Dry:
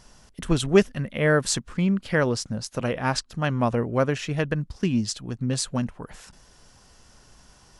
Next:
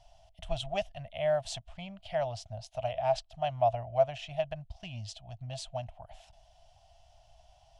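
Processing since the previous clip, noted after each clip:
drawn EQ curve 100 Hz 0 dB, 250 Hz −26 dB, 460 Hz −29 dB, 660 Hz +14 dB, 1,100 Hz −13 dB, 1,600 Hz −16 dB, 3,100 Hz +1 dB, 4,600 Hz −8 dB, 7,000 Hz −12 dB, 11,000 Hz −16 dB
level −5.5 dB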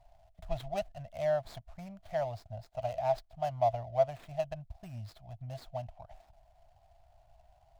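running median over 15 samples
level −1.5 dB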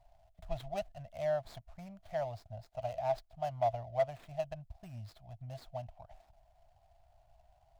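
hard clipping −20 dBFS, distortion −24 dB
level −3 dB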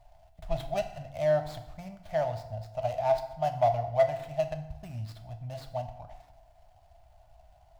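feedback delay network reverb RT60 0.92 s, low-frequency decay 1×, high-frequency decay 0.75×, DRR 6 dB
level +6.5 dB

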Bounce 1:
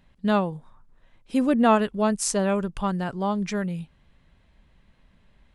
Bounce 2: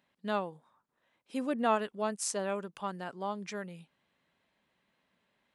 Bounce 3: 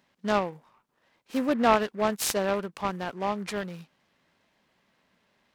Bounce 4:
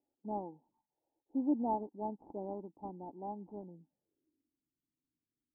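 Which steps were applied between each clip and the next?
Bessel high-pass filter 340 Hz, order 2; level −8 dB
short delay modulated by noise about 1,200 Hz, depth 0.042 ms; level +7 dB
low-pass filter sweep 830 Hz → 180 Hz, 0:03.65–0:04.66; phaser swept by the level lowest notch 190 Hz, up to 2,700 Hz, full sweep at −26.5 dBFS; formant resonators in series u; level −3 dB

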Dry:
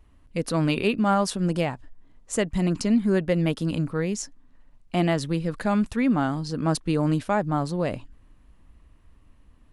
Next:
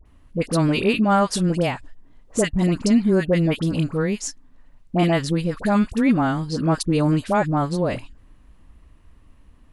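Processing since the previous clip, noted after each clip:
all-pass dispersion highs, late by 57 ms, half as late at 1,100 Hz
level +4 dB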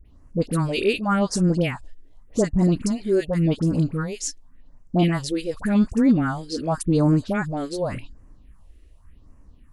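all-pass phaser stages 4, 0.88 Hz, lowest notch 150–3,500 Hz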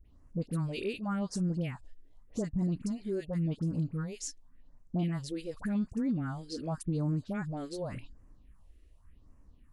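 dynamic equaliser 150 Hz, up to +8 dB, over −33 dBFS, Q 1
downward compressor 2 to 1, threshold −28 dBFS, peak gain reduction 10.5 dB
level −8.5 dB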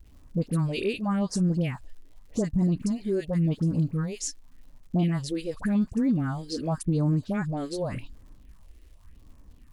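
notch filter 1,400 Hz, Q 19
surface crackle 180 per second −59 dBFS
level +7 dB

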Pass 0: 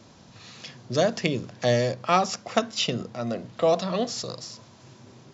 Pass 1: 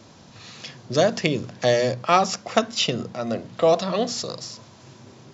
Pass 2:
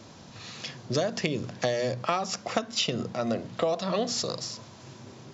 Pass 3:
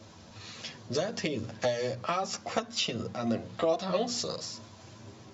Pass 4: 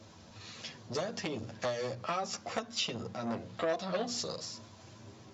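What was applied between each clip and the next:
mains-hum notches 60/120/180/240 Hz; level +3.5 dB
downward compressor 12 to 1, threshold −23 dBFS, peak gain reduction 12.5 dB
multi-voice chorus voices 6, 0.56 Hz, delay 11 ms, depth 2 ms
saturating transformer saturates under 1,200 Hz; level −3 dB

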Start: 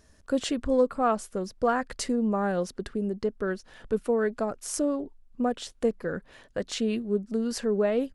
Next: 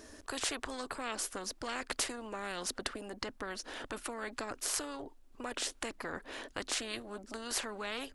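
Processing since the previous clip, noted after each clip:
low shelf with overshoot 220 Hz −8.5 dB, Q 3
every bin compressed towards the loudest bin 4 to 1
level −5 dB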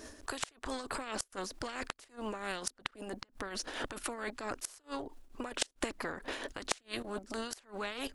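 output level in coarse steps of 12 dB
gate with flip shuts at −28 dBFS, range −29 dB
shaped tremolo triangle 4.5 Hz, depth 65%
level +12 dB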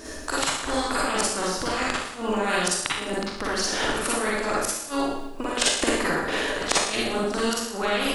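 convolution reverb RT60 0.80 s, pre-delay 39 ms, DRR −6 dB
level +8 dB

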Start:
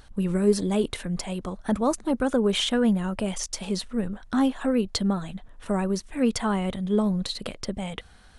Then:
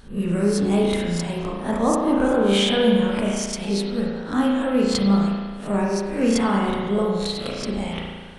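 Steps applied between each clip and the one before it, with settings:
peak hold with a rise ahead of every peak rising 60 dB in 0.30 s
spring reverb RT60 1.5 s, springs 35 ms, chirp 65 ms, DRR −2.5 dB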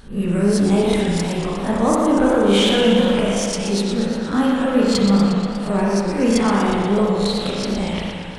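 in parallel at −6.5 dB: soft clipping −19 dBFS, distortion −11 dB
on the sum: feedback echo with a swinging delay time 119 ms, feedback 71%, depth 159 cents, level −7.5 dB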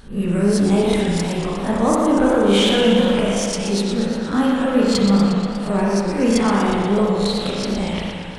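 no processing that can be heard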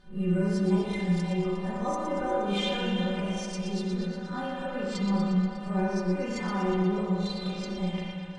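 high-frequency loss of the air 83 metres
stiff-string resonator 180 Hz, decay 0.22 s, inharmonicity 0.008

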